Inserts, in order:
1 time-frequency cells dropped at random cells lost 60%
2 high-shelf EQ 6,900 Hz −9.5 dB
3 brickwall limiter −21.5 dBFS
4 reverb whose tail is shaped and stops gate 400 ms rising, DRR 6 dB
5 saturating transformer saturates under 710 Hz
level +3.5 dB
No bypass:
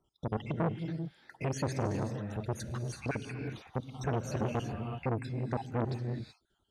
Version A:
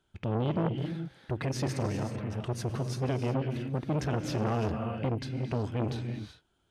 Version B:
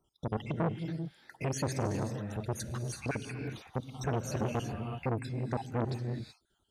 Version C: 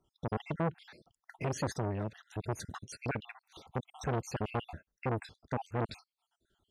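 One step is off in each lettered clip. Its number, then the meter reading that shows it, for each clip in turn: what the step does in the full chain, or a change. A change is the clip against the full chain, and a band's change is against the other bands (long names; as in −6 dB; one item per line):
1, 4 kHz band +3.0 dB
2, 8 kHz band +4.5 dB
4, change in momentary loudness spread +8 LU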